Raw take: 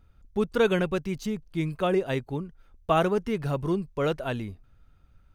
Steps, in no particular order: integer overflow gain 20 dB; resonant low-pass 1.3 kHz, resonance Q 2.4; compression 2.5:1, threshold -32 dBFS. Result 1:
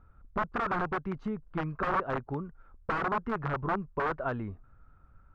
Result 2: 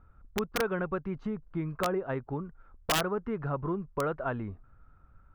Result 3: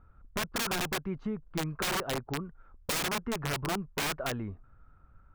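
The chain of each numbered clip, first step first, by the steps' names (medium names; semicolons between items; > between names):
integer overflow > compression > resonant low-pass; compression > resonant low-pass > integer overflow; resonant low-pass > integer overflow > compression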